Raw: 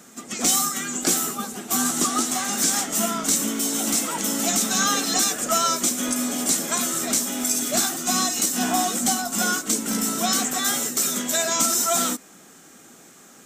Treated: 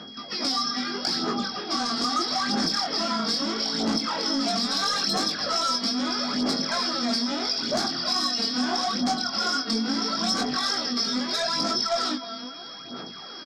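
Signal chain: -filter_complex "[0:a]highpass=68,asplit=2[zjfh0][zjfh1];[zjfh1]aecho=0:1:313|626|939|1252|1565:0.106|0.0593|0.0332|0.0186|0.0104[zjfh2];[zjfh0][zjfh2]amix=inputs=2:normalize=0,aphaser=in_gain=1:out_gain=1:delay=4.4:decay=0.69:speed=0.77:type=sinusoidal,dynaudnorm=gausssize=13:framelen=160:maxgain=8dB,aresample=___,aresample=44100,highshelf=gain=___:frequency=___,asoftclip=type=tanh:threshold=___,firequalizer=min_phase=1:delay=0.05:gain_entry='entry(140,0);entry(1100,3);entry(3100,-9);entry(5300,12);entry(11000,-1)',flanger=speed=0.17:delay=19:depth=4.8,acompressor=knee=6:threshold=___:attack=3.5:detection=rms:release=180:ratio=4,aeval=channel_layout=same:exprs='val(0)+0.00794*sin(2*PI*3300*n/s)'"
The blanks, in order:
11025, 8, 3500, -13dB, -21dB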